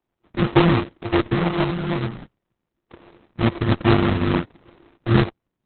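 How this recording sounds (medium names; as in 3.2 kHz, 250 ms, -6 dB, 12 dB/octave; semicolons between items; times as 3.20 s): a buzz of ramps at a fixed pitch in blocks of 128 samples; phasing stages 12, 2.1 Hz, lowest notch 790–1700 Hz; aliases and images of a low sample rate 1.6 kHz, jitter 20%; Opus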